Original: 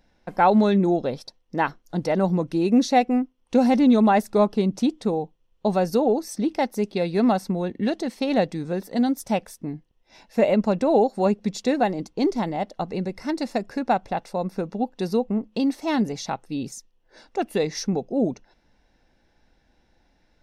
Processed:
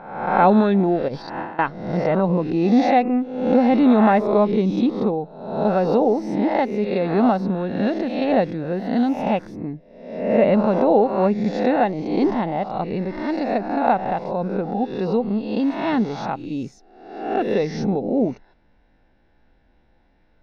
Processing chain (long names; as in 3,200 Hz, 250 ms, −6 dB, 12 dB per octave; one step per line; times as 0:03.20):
peak hold with a rise ahead of every peak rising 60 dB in 0.84 s
0:01.08–0:01.59: compressor whose output falls as the input rises −31 dBFS, ratio −1
high-frequency loss of the air 280 metres
level +1.5 dB